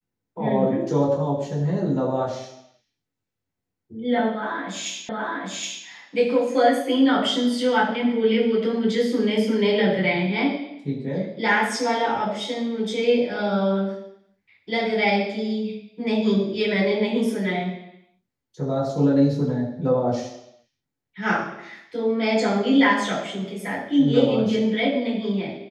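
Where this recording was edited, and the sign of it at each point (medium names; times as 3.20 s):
5.09 s: repeat of the last 0.77 s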